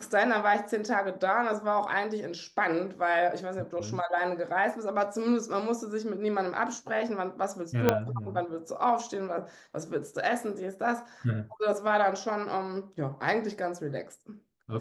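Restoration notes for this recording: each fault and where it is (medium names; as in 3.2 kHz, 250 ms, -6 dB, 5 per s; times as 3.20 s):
7.89 s: pop -8 dBFS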